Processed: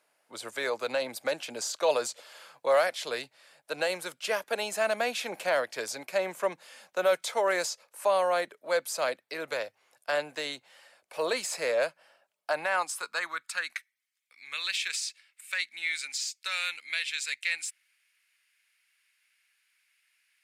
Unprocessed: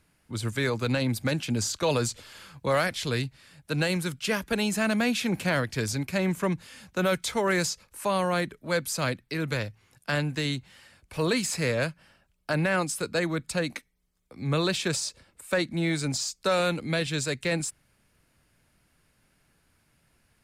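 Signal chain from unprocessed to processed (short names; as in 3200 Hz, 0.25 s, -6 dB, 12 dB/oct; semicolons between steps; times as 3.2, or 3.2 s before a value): high-pass sweep 600 Hz -> 2200 Hz, 12.27–14.2; gain -3.5 dB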